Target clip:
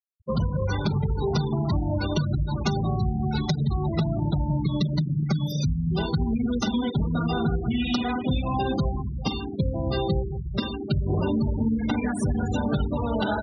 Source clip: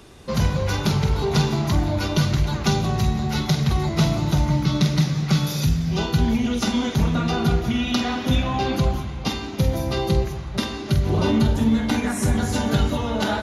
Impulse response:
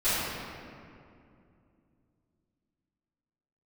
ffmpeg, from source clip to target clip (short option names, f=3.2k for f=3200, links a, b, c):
-af "acompressor=threshold=-20dB:ratio=8,afftfilt=real='re*gte(hypot(re,im),0.0631)':imag='im*gte(hypot(re,im),0.0631)':win_size=1024:overlap=0.75"